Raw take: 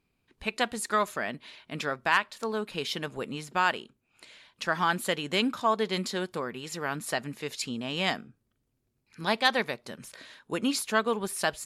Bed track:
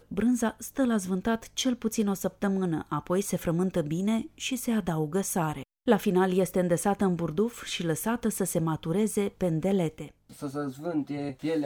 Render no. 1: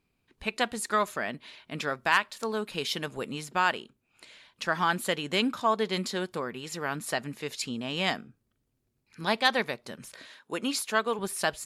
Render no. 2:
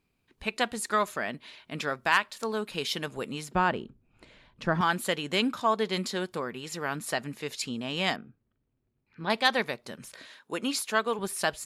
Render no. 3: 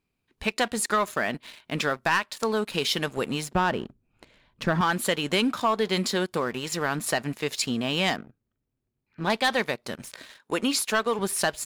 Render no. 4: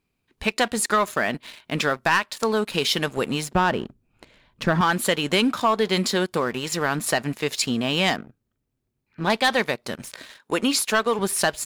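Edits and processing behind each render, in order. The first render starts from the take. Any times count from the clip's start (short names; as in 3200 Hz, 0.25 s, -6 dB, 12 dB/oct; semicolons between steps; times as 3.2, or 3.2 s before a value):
1.87–3.49 high shelf 4700 Hz +4.5 dB; 10.26–11.19 HPF 310 Hz 6 dB/oct
3.55–4.81 tilt -4 dB/oct; 8.16–9.3 air absorption 350 m
sample leveller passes 2; compressor 2:1, threshold -23 dBFS, peak gain reduction 5.5 dB
gain +3.5 dB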